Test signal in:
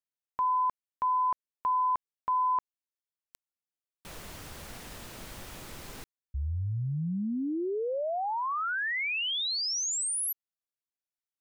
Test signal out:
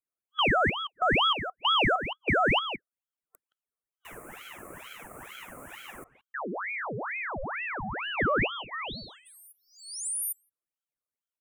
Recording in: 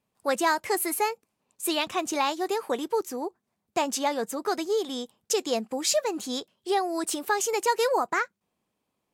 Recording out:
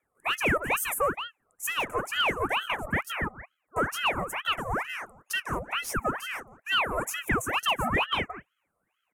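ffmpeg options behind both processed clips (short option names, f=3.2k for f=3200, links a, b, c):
-filter_complex "[0:a]superequalizer=9b=3.98:10b=0.251:13b=2.51:16b=1.41,asplit=2[a][b];[b]adelay=170,highpass=300,lowpass=3.4k,asoftclip=type=hard:threshold=-12.5dB,volume=-15dB[c];[a][c]amix=inputs=2:normalize=0,asoftclip=type=tanh:threshold=-18.5dB,asuperstop=centerf=3900:order=8:qfactor=0.69,aeval=exprs='val(0)*sin(2*PI*1300*n/s+1300*0.8/2.2*sin(2*PI*2.2*n/s))':c=same"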